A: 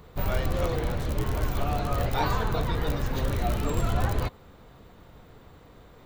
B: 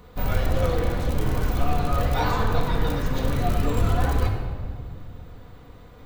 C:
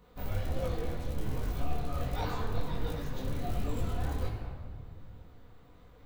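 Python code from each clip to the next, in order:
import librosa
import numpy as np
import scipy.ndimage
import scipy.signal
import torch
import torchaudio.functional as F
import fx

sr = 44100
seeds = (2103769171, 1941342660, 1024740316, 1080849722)

y1 = fx.room_shoebox(x, sr, seeds[0], volume_m3=2900.0, walls='mixed', distance_m=1.9)
y2 = fx.dynamic_eq(y1, sr, hz=1300.0, q=1.0, threshold_db=-38.0, ratio=4.0, max_db=-4)
y2 = fx.detune_double(y2, sr, cents=47)
y2 = y2 * librosa.db_to_amplitude(-7.0)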